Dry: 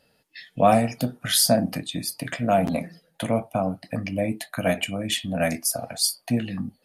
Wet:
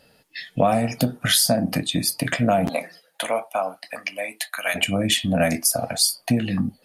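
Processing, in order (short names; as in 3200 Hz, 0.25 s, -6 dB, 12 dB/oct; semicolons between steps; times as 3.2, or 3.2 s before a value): 2.68–4.74 HPF 550 Hz -> 1400 Hz 12 dB/oct; compressor 6:1, threshold -23 dBFS, peak gain reduction 11 dB; gain +7.5 dB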